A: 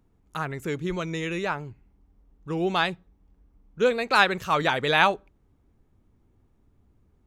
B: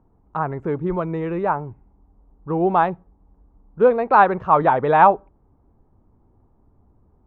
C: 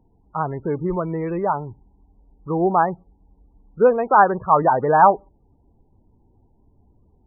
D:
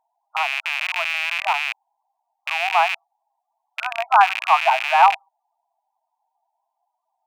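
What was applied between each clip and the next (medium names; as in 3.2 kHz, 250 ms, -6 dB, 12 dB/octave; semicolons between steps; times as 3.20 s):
resonant low-pass 930 Hz, resonance Q 2; trim +5 dB
loudest bins only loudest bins 32
rattle on loud lows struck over -36 dBFS, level -11 dBFS; brick-wall FIR high-pass 630 Hz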